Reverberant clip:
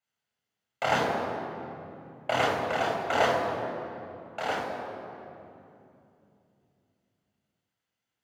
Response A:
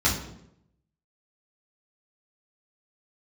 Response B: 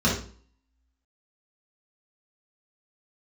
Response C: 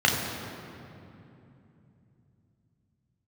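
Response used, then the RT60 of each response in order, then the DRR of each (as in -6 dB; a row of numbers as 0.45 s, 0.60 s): C; 0.75 s, 0.45 s, 2.9 s; -8.0 dB, -7.0 dB, -1.5 dB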